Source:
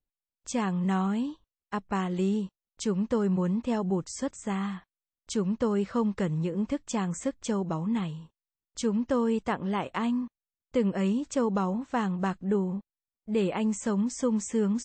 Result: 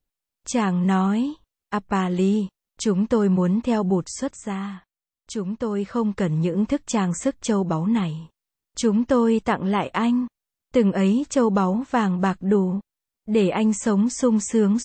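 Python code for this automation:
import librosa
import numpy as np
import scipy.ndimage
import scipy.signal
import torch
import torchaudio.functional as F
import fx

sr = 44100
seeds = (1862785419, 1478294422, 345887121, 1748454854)

y = fx.gain(x, sr, db=fx.line((3.96, 7.0), (4.76, 0.5), (5.59, 0.5), (6.44, 7.5)))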